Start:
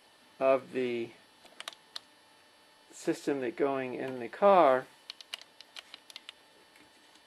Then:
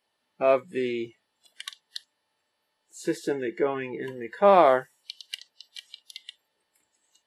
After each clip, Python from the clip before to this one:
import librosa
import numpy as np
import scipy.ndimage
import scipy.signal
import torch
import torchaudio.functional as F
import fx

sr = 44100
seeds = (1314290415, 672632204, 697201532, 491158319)

y = fx.noise_reduce_blind(x, sr, reduce_db=21)
y = fx.peak_eq(y, sr, hz=290.0, db=-6.5, octaves=0.2)
y = F.gain(torch.from_numpy(y), 5.0).numpy()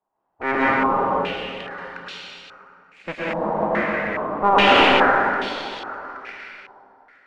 y = fx.cycle_switch(x, sr, every=2, mode='inverted')
y = fx.rev_plate(y, sr, seeds[0], rt60_s=2.8, hf_ratio=0.9, predelay_ms=95, drr_db=-9.0)
y = fx.filter_held_lowpass(y, sr, hz=2.4, low_hz=880.0, high_hz=3500.0)
y = F.gain(torch.from_numpy(y), -6.0).numpy()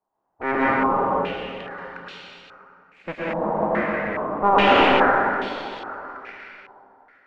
y = fx.high_shelf(x, sr, hz=3000.0, db=-10.5)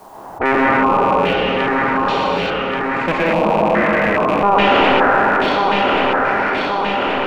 y = fx.rattle_buzz(x, sr, strikes_db=-36.0, level_db=-26.0)
y = fx.echo_feedback(y, sr, ms=1131, feedback_pct=32, wet_db=-10.5)
y = fx.env_flatten(y, sr, amount_pct=70)
y = F.gain(torch.from_numpy(y), 1.5).numpy()